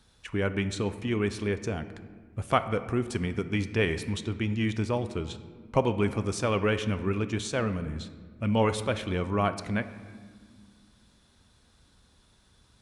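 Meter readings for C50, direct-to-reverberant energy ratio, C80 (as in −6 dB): 12.5 dB, 10.5 dB, 13.5 dB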